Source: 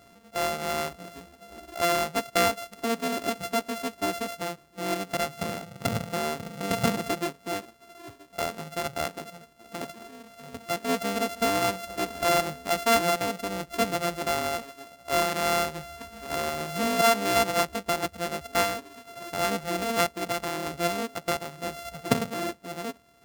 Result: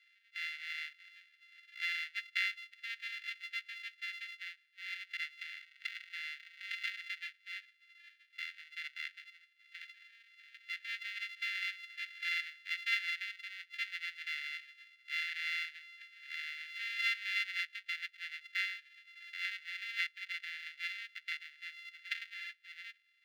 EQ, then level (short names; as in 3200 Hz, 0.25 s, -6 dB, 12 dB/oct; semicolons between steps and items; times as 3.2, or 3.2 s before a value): steep high-pass 1700 Hz 72 dB/oct; air absorption 350 m; notch 5300 Hz, Q 13; +1.0 dB